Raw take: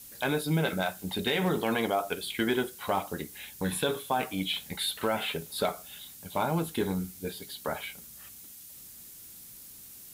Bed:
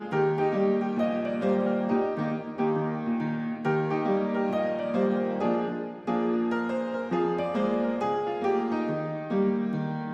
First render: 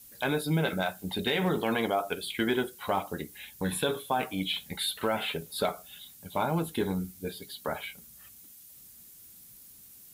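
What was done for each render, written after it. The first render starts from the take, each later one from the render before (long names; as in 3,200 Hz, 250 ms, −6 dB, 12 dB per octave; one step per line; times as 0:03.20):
broadband denoise 6 dB, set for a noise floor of −49 dBFS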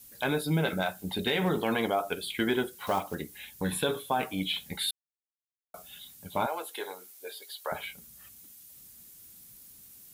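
0:02.73–0:03.15: one scale factor per block 5 bits
0:04.91–0:05.74: silence
0:06.46–0:07.72: high-pass filter 500 Hz 24 dB per octave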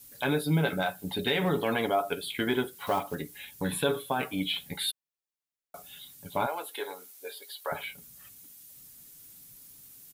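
comb filter 7.1 ms, depth 38%
dynamic equaliser 6,400 Hz, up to −4 dB, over −54 dBFS, Q 1.7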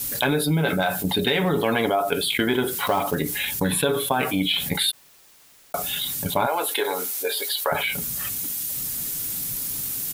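transient designer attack +6 dB, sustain 0 dB
envelope flattener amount 70%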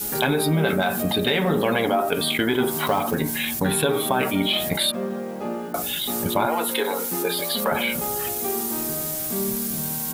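mix in bed −3 dB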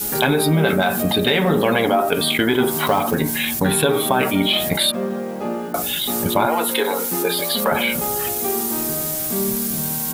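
level +4 dB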